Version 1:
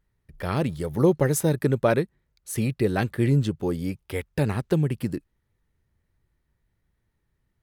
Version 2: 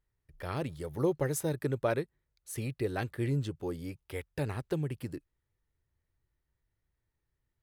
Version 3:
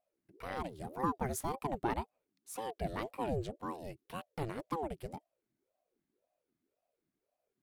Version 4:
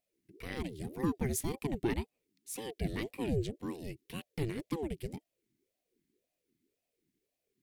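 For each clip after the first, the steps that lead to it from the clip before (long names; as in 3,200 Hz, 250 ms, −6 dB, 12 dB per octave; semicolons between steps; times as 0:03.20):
parametric band 200 Hz −9.5 dB 0.45 octaves; level −8.5 dB
ring modulator whose carrier an LFO sweeps 450 Hz, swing 50%, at 1.9 Hz; level −2 dB
flat-topped bell 910 Hz −14 dB; level +5 dB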